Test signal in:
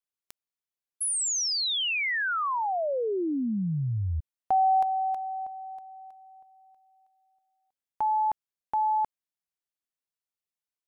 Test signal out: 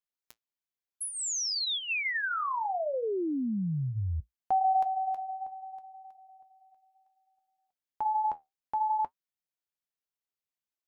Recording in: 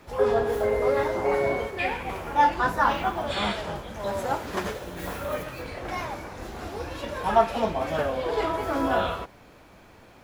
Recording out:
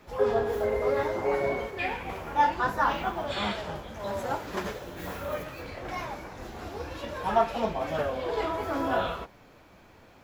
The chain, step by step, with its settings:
parametric band 9,200 Hz −10.5 dB 0.2 octaves
flanger 0.65 Hz, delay 4.4 ms, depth 9.5 ms, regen −61%
level +1 dB

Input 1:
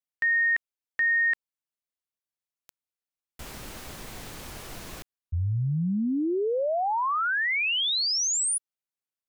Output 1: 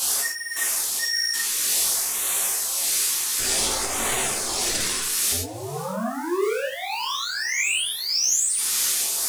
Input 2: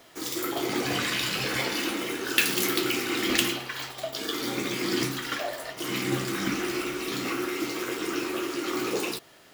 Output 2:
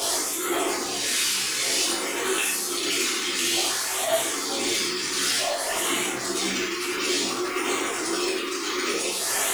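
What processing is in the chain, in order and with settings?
linear delta modulator 64 kbit/s, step −16 dBFS
gate on every frequency bin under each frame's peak −20 dB strong
bass and treble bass −12 dB, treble +9 dB
mains-hum notches 50/100/150/200 Hz
in parallel at −1 dB: compressor whose output falls as the input rises −23 dBFS, ratio −0.5
on the sum: amplitude tremolo 1.7 Hz, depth 38%
tuned comb filter 870 Hz, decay 0.15 s, harmonics all, mix 50%
floating-point word with a short mantissa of 2 bits
auto-filter notch sine 0.55 Hz 610–5,200 Hz
on a send: delay with a high-pass on its return 512 ms, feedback 51%, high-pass 1,400 Hz, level −20.5 dB
on the sum: reverb whose tail is shaped and stops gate 130 ms flat, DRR −0.5 dB
micro pitch shift up and down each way 18 cents

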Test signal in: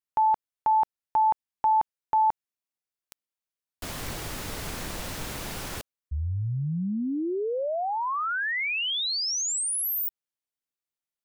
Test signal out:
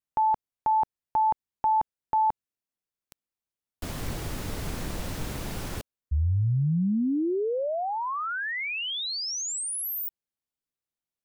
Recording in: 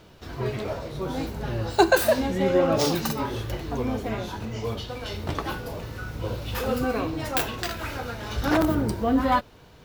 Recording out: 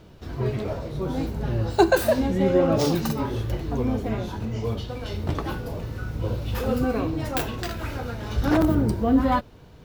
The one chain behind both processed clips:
low-shelf EQ 490 Hz +8.5 dB
level −3.5 dB

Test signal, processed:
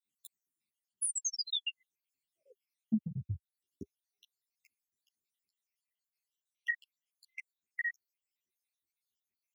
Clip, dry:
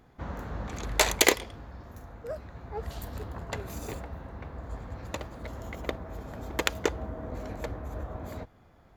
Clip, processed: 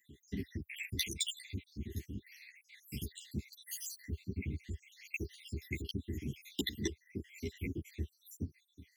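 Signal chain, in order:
time-frequency cells dropped at random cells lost 77%
Chebyshev band-stop filter 400–2,000 Hz, order 5
downward compressor 16 to 1, threshold −42 dBFS
high-pass filter 78 Hz 24 dB per octave
string-ensemble chorus
level +14 dB

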